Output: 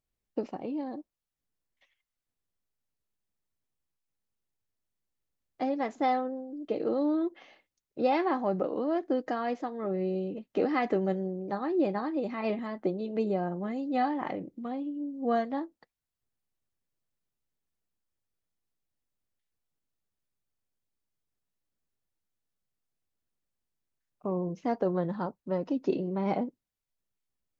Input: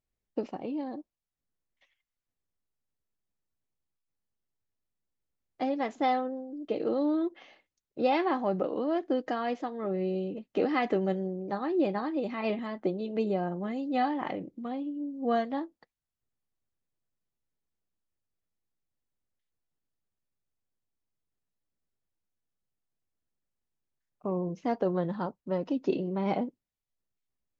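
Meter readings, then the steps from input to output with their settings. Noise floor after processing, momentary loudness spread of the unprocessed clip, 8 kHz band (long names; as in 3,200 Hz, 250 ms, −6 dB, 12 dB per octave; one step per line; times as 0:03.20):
below −85 dBFS, 8 LU, can't be measured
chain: dynamic equaliser 3,100 Hz, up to −5 dB, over −57 dBFS, Q 2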